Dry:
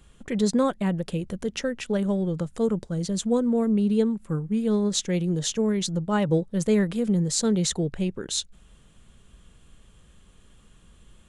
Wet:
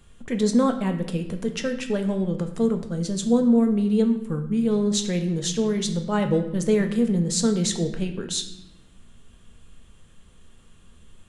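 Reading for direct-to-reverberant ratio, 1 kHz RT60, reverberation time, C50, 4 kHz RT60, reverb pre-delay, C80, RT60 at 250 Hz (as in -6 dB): 5.0 dB, 0.85 s, 0.95 s, 9.5 dB, 0.75 s, 4 ms, 12.0 dB, 1.4 s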